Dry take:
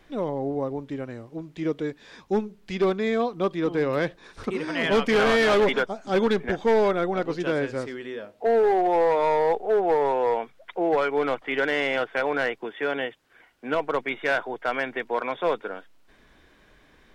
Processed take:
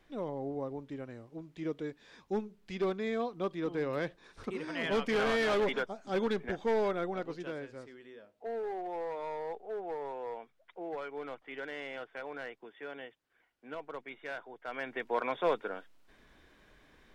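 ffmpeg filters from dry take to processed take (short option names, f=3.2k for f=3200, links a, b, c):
-af "volume=2.5dB,afade=t=out:st=7.05:d=0.6:silence=0.421697,afade=t=in:st=14.63:d=0.55:silence=0.251189"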